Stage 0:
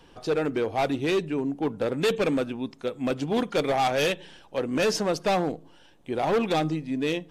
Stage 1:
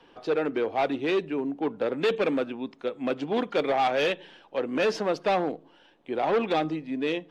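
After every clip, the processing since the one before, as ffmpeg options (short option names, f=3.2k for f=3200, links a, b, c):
-filter_complex "[0:a]acrossover=split=210 4300:gain=0.2 1 0.141[a][b][c];[a][b][c]amix=inputs=3:normalize=0"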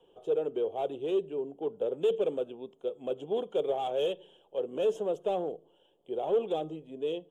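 -af "firequalizer=gain_entry='entry(180,0);entry(270,-8);entry(400,8);entry(1000,-6);entry(2000,-20);entry(3200,4);entry(4500,-26);entry(6900,4)':delay=0.05:min_phase=1,volume=-8.5dB"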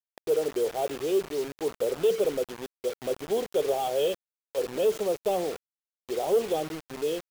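-af "acrusher=bits=6:mix=0:aa=0.000001,volume=3.5dB"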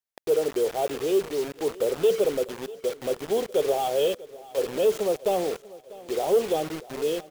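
-af "aecho=1:1:644|1288|1932|2576:0.106|0.054|0.0276|0.0141,volume=2.5dB"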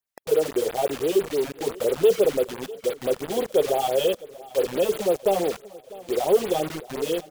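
-af "afftfilt=real='re*(1-between(b*sr/1024,330*pow(7100/330,0.5+0.5*sin(2*PI*5.9*pts/sr))/1.41,330*pow(7100/330,0.5+0.5*sin(2*PI*5.9*pts/sr))*1.41))':imag='im*(1-between(b*sr/1024,330*pow(7100/330,0.5+0.5*sin(2*PI*5.9*pts/sr))/1.41,330*pow(7100/330,0.5+0.5*sin(2*PI*5.9*pts/sr))*1.41))':win_size=1024:overlap=0.75,volume=3.5dB"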